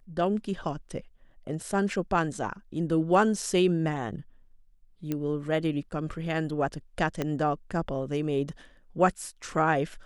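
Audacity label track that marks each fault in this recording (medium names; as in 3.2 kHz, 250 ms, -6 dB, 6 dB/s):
5.120000	5.120000	pop -17 dBFS
7.220000	7.220000	pop -15 dBFS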